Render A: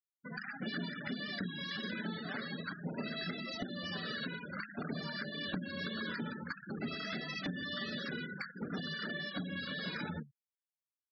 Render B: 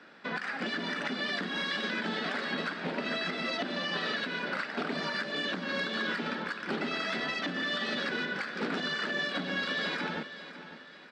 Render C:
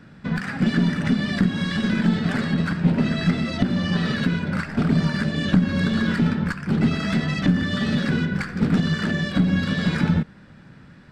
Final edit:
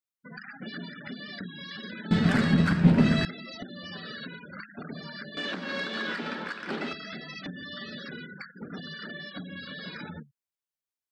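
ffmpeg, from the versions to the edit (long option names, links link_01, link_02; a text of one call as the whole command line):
ffmpeg -i take0.wav -i take1.wav -i take2.wav -filter_complex "[0:a]asplit=3[link_01][link_02][link_03];[link_01]atrim=end=2.112[link_04];[2:a]atrim=start=2.108:end=3.252[link_05];[link_02]atrim=start=3.248:end=5.372[link_06];[1:a]atrim=start=5.368:end=6.932[link_07];[link_03]atrim=start=6.928[link_08];[link_04][link_05]acrossfade=duration=0.004:curve1=hsin:curve2=hsin[link_09];[link_09][link_06]acrossfade=duration=0.004:curve1=hsin:curve2=hsin[link_10];[link_10][link_07]acrossfade=duration=0.004:curve1=hsin:curve2=hsin[link_11];[link_11][link_08]acrossfade=duration=0.004:curve1=hsin:curve2=hsin" out.wav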